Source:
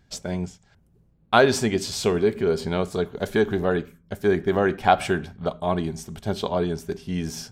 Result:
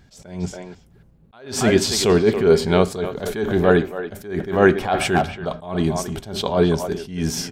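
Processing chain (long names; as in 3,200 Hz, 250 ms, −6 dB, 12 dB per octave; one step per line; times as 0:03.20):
far-end echo of a speakerphone 280 ms, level −11 dB
level that may rise only so fast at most 110 dB per second
level +8.5 dB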